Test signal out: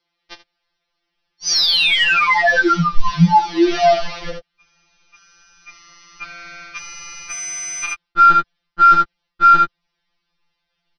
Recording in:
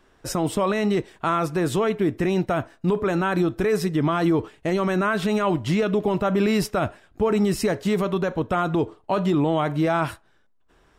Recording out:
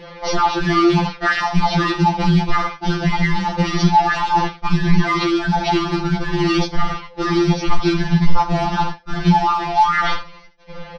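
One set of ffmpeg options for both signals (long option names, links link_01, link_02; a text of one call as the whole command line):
ffmpeg -i in.wav -af "aresample=11025,acrusher=bits=3:mode=log:mix=0:aa=0.000001,aresample=44100,aecho=1:1:3.3:0.62,asoftclip=type=tanh:threshold=-12dB,aeval=exprs='val(0)*sin(2*PI*550*n/s)':channel_layout=same,asubboost=boost=6:cutoff=120,aecho=1:1:36|77:0.158|0.178,areverse,acompressor=threshold=-32dB:ratio=6,areverse,alimiter=level_in=29.5dB:limit=-1dB:release=50:level=0:latency=1,afftfilt=real='re*2.83*eq(mod(b,8),0)':imag='im*2.83*eq(mod(b,8),0)':win_size=2048:overlap=0.75,volume=-4dB" out.wav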